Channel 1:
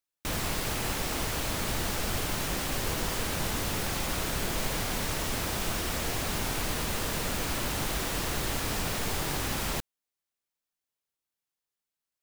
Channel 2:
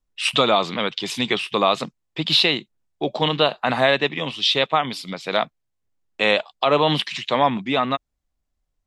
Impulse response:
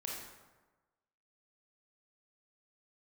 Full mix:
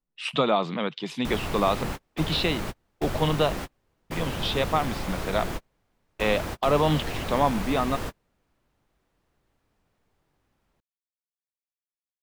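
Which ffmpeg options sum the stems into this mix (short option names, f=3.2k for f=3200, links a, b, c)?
-filter_complex "[0:a]adelay=1000,volume=1.5dB[a];[1:a]lowshelf=f=120:t=q:w=3:g=-7,volume=-4dB,asplit=3[b][c][d];[b]atrim=end=3.56,asetpts=PTS-STARTPTS,afade=t=out:st=3.556:d=0.004:c=hsin[e];[c]atrim=start=3.56:end=4.1,asetpts=PTS-STARTPTS,volume=0[f];[d]atrim=start=4.1,asetpts=PTS-STARTPTS,afade=t=in:d=0.004:c=hsin[g];[e][f][g]concat=n=3:v=0:a=1,asplit=2[h][i];[i]apad=whole_len=583420[j];[a][j]sidechaingate=range=-41dB:threshold=-41dB:ratio=16:detection=peak[k];[k][h]amix=inputs=2:normalize=0,highshelf=f=2.8k:g=-11.5"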